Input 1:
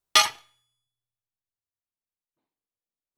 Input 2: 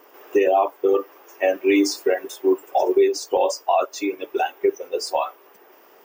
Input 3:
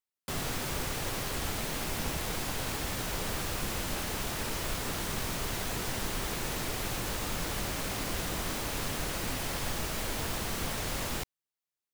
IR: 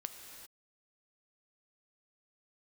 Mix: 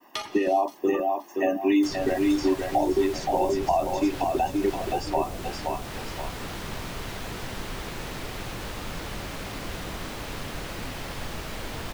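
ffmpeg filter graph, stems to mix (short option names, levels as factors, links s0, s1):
-filter_complex "[0:a]volume=0.422,asplit=3[s0][s1][s2];[s1]volume=0.668[s3];[s2]volume=0.0794[s4];[1:a]equalizer=f=230:t=o:w=1.2:g=11,agate=range=0.0224:threshold=0.00631:ratio=3:detection=peak,aecho=1:1:1.1:0.81,volume=0.841,asplit=2[s5][s6];[s6]volume=0.501[s7];[2:a]adelay=1550,volume=1.06[s8];[3:a]atrim=start_sample=2205[s9];[s3][s9]afir=irnorm=-1:irlink=0[s10];[s4][s7]amix=inputs=2:normalize=0,aecho=0:1:523|1046|1569|2092:1|0.3|0.09|0.027[s11];[s0][s5][s8][s10][s11]amix=inputs=5:normalize=0,acrossover=split=680|4900[s12][s13][s14];[s12]acompressor=threshold=0.1:ratio=4[s15];[s13]acompressor=threshold=0.0178:ratio=4[s16];[s14]acompressor=threshold=0.00398:ratio=4[s17];[s15][s16][s17]amix=inputs=3:normalize=0"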